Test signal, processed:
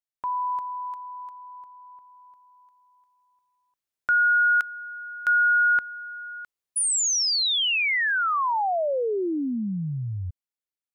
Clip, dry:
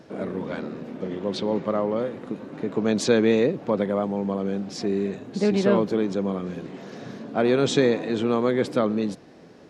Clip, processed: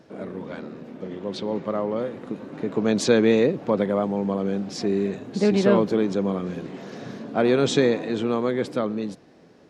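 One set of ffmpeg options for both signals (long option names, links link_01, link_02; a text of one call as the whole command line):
ffmpeg -i in.wav -af "dynaudnorm=framelen=310:gausssize=13:maxgain=8dB,volume=-4dB" out.wav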